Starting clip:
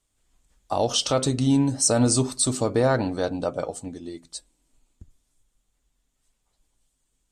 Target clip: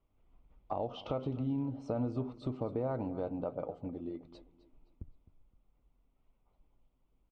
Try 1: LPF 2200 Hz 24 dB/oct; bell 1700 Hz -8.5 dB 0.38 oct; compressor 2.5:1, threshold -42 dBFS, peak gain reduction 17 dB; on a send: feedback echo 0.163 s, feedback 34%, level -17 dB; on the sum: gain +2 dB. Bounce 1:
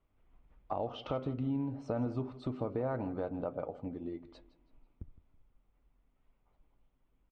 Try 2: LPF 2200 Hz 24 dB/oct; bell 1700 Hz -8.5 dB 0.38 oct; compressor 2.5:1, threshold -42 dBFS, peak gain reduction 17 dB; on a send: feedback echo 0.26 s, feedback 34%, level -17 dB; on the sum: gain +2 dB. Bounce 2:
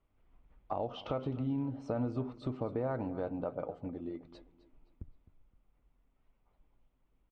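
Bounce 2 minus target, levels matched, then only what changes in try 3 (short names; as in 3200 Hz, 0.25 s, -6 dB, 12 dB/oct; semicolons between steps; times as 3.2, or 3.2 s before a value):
2000 Hz band +5.0 dB
change: bell 1700 Hz -20 dB 0.38 oct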